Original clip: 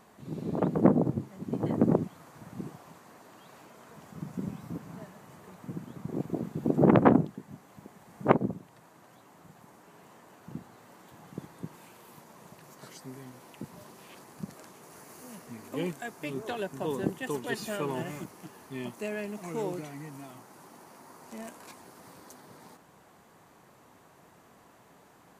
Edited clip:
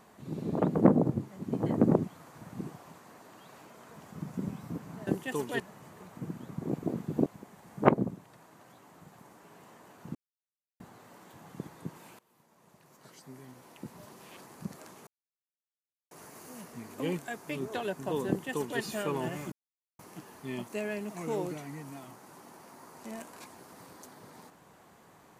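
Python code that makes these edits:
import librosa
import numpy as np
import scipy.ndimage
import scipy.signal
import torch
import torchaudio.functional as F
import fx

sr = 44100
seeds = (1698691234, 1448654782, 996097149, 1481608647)

y = fx.edit(x, sr, fx.cut(start_s=6.73, length_s=0.96),
    fx.insert_silence(at_s=10.58, length_s=0.65),
    fx.fade_in_from(start_s=11.97, length_s=2.13, floor_db=-20.5),
    fx.insert_silence(at_s=14.85, length_s=1.04),
    fx.duplicate(start_s=17.02, length_s=0.53, to_s=5.07),
    fx.insert_silence(at_s=18.26, length_s=0.47), tone=tone)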